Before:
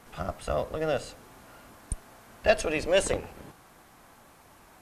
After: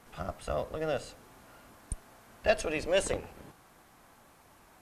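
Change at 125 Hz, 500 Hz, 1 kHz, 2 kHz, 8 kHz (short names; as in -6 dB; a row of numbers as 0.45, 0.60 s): -4.0, -4.0, -4.0, -4.0, -4.0 dB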